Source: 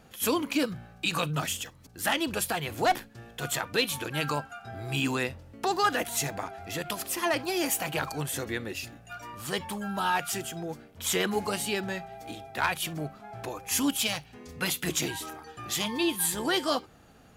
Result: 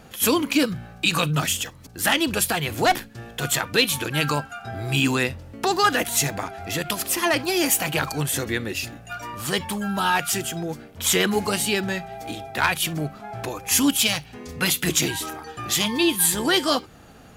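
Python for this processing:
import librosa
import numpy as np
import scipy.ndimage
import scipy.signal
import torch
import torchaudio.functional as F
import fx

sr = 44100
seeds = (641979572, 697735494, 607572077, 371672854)

y = fx.dynamic_eq(x, sr, hz=730.0, q=0.7, threshold_db=-41.0, ratio=4.0, max_db=-4)
y = y * librosa.db_to_amplitude(8.5)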